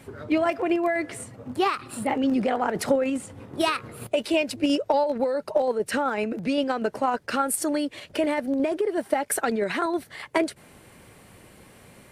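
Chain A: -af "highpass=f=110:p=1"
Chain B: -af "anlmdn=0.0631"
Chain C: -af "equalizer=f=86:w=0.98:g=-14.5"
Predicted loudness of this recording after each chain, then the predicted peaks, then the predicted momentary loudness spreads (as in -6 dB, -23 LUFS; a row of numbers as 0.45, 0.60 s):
-26.0, -26.0, -26.5 LUFS; -6.0, -5.5, -6.0 dBFS; 5, 5, 5 LU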